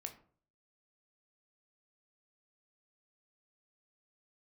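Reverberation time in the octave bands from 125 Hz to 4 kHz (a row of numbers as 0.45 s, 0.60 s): 0.65 s, 0.50 s, 0.50 s, 0.45 s, 0.35 s, 0.25 s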